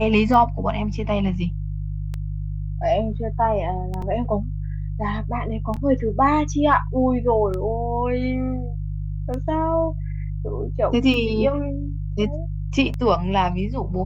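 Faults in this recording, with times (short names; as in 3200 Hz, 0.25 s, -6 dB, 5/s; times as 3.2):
hum 50 Hz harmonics 3 -27 dBFS
tick 33 1/3 rpm -17 dBFS
4.02 gap 3.9 ms
5.76–5.77 gap 6.3 ms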